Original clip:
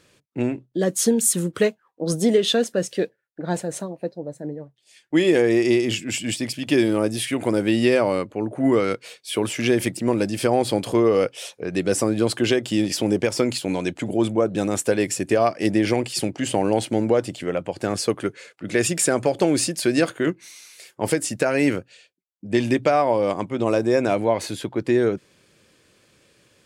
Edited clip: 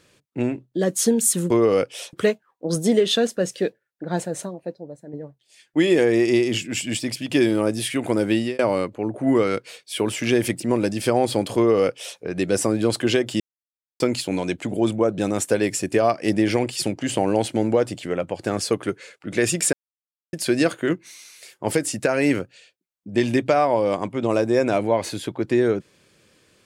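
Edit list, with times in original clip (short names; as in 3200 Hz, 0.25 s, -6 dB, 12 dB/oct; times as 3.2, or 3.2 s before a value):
3.7–4.5 fade out, to -9 dB
7.71–7.96 fade out
10.93–11.56 copy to 1.5
12.77–13.37 mute
19.1–19.7 mute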